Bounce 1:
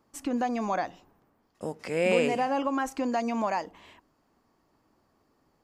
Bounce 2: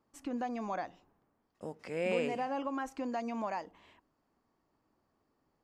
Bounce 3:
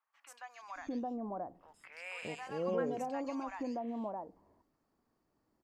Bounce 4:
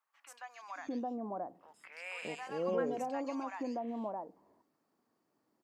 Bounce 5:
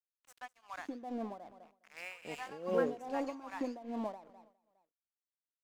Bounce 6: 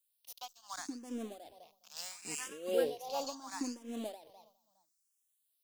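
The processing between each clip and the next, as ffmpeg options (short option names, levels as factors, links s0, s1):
-af "highshelf=f=6000:g=-7,volume=0.398"
-filter_complex "[0:a]acrossover=split=960|2900[s0][s1][s2];[s2]adelay=130[s3];[s0]adelay=620[s4];[s4][s1][s3]amix=inputs=3:normalize=0,volume=0.891"
-af "highpass=180,volume=1.12"
-af "aeval=exprs='sgn(val(0))*max(abs(val(0))-0.002,0)':c=same,aecho=1:1:205|410|615:0.1|0.04|0.016,tremolo=f=2.5:d=0.82,volume=1.5"
-filter_complex "[0:a]aexciter=amount=6.2:drive=4.8:freq=3000,asplit=2[s0][s1];[s1]afreqshift=0.74[s2];[s0][s2]amix=inputs=2:normalize=1,volume=1.12"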